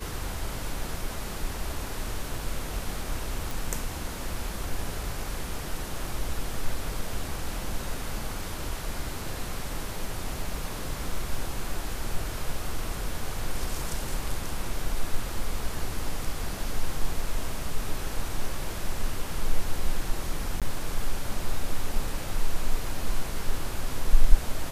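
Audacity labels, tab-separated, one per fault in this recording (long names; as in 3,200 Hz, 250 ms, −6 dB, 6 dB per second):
3.510000	3.510000	click
20.600000	20.620000	drop-out 17 ms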